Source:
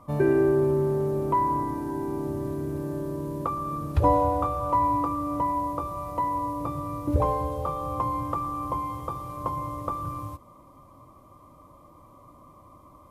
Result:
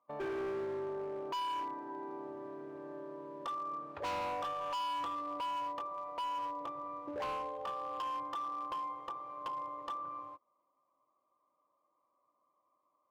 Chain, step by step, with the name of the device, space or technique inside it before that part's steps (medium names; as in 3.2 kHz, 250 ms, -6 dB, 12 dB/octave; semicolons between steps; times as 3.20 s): walkie-talkie (band-pass 530–2300 Hz; hard clipper -28.5 dBFS, distortion -8 dB; gate -43 dBFS, range -17 dB); trim -6.5 dB